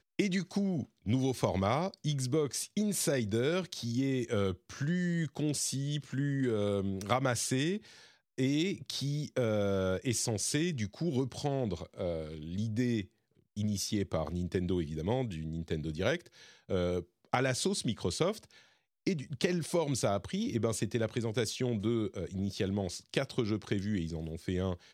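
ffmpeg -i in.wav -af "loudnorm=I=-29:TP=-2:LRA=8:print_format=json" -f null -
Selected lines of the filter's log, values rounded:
"input_i" : "-33.6",
"input_tp" : "-11.4",
"input_lra" : "2.8",
"input_thresh" : "-43.8",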